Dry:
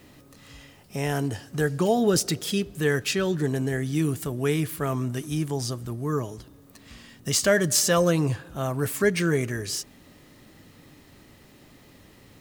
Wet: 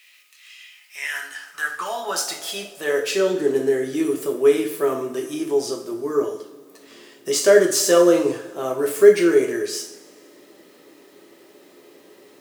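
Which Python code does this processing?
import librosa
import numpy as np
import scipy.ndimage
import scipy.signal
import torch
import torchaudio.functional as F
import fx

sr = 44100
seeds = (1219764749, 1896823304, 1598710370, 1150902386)

y = fx.rev_double_slope(x, sr, seeds[0], early_s=0.47, late_s=1.8, knee_db=-18, drr_db=0.5)
y = fx.quant_dither(y, sr, seeds[1], bits=10, dither='none')
y = fx.filter_sweep_highpass(y, sr, from_hz=2400.0, to_hz=390.0, start_s=0.72, end_s=3.38, q=3.2)
y = F.gain(torch.from_numpy(y), -1.5).numpy()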